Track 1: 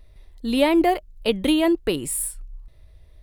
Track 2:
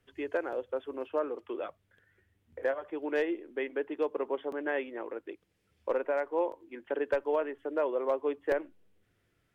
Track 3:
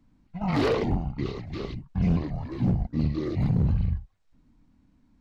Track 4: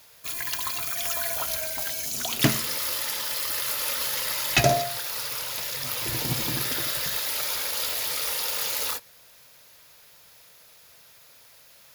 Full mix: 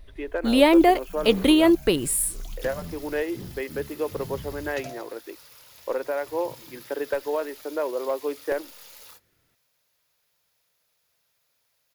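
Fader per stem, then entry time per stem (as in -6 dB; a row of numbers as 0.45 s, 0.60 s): +2.0 dB, +2.5 dB, -16.0 dB, -19.0 dB; 0.00 s, 0.00 s, 0.75 s, 0.20 s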